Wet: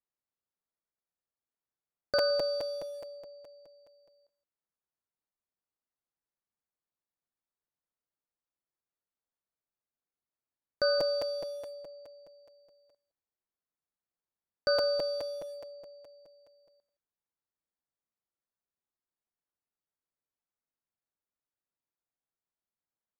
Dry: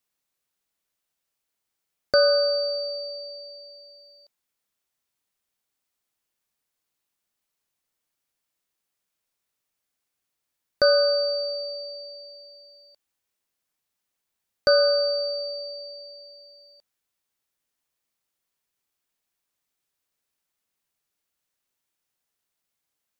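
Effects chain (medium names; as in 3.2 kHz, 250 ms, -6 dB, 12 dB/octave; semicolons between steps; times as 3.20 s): local Wiener filter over 15 samples; delay 167 ms -19 dB; crackling interface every 0.21 s, samples 256, repeat, from 0.71 s; trim -9 dB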